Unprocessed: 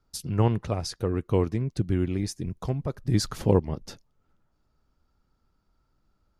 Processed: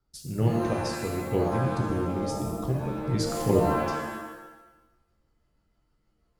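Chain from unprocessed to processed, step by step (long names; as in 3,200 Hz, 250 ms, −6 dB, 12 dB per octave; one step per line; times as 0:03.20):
rotating-speaker cabinet horn 1.1 Hz, later 6.3 Hz, at 0:03.45
reverb with rising layers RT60 1 s, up +7 semitones, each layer −2 dB, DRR 2 dB
level −3 dB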